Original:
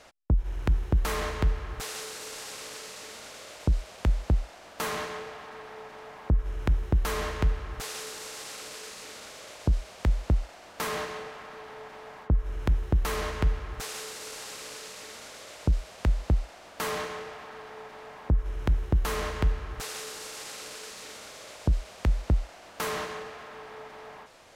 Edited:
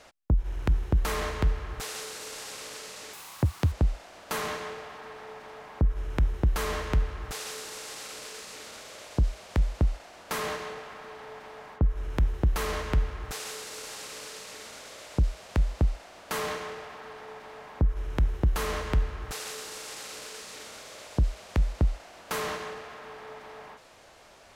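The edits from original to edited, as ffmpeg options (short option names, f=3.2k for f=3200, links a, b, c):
-filter_complex "[0:a]asplit=3[a][b][c];[a]atrim=end=3.134[d];[b]atrim=start=3.13:end=4.21,asetpts=PTS-STARTPTS,asetrate=80703,aresample=44100,atrim=end_sample=26026,asetpts=PTS-STARTPTS[e];[c]atrim=start=4.206[f];[d][e]acrossfade=d=0.004:c1=hsin:c2=hsin[g];[g][f]acrossfade=d=0.004:c1=hsin:c2=hsin"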